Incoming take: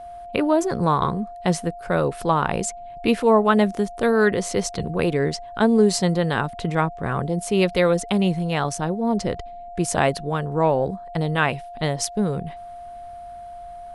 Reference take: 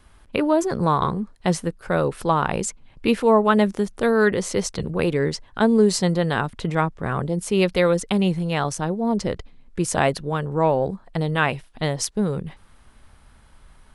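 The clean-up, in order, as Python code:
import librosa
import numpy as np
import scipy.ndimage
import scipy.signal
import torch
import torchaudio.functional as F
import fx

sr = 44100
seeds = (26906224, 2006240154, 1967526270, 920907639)

y = fx.notch(x, sr, hz=700.0, q=30.0)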